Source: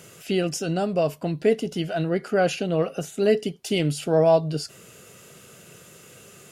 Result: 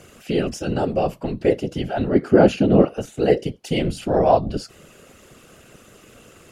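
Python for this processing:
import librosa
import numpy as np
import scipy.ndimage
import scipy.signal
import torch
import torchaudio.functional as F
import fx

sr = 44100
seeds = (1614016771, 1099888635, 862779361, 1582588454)

y = fx.high_shelf(x, sr, hz=4500.0, db=-8.5)
y = fx.whisperise(y, sr, seeds[0])
y = fx.peak_eq(y, sr, hz=240.0, db=10.5, octaves=1.9, at=(2.15, 2.85))
y = y * librosa.db_to_amplitude(2.0)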